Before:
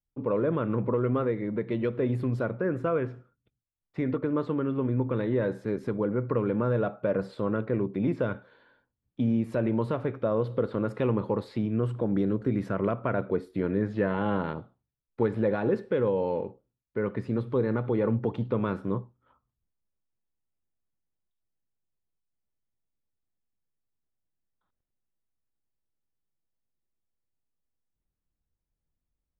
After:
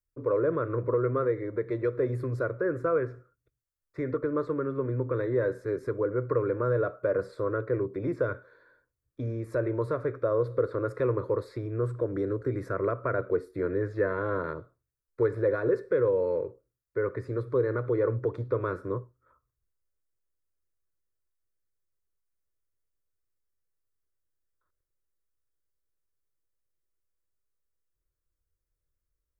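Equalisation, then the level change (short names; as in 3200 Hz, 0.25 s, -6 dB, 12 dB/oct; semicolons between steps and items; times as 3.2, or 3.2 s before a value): fixed phaser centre 800 Hz, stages 6; +2.0 dB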